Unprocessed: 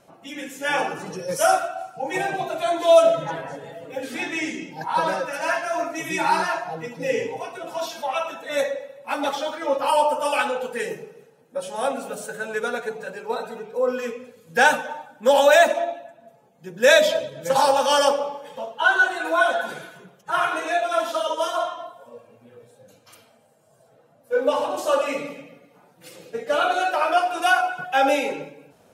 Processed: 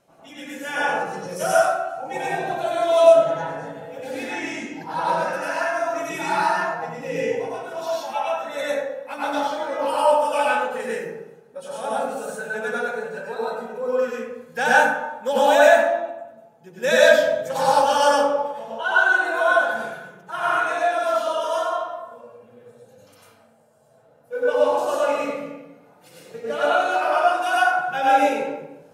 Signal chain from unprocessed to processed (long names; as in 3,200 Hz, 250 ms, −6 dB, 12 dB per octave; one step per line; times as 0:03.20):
dense smooth reverb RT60 0.8 s, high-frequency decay 0.4×, pre-delay 85 ms, DRR −7 dB
level −7.5 dB